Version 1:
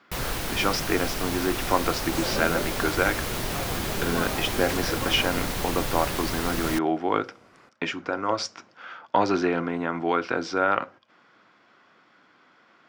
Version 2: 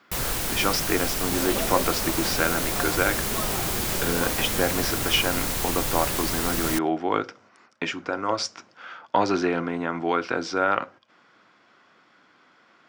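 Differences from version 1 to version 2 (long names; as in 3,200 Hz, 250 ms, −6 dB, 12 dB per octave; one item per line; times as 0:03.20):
first sound: add parametric band 7,700 Hz +3 dB 0.65 octaves
second sound: entry −0.80 s
master: add high-shelf EQ 7,300 Hz +8 dB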